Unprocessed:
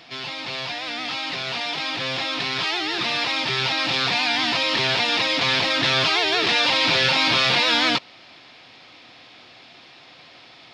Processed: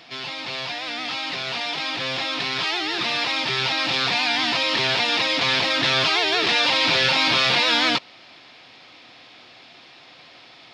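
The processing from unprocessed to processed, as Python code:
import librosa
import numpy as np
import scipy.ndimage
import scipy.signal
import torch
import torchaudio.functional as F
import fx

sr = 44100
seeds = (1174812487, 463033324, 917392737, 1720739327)

y = fx.low_shelf(x, sr, hz=130.0, db=-4.0)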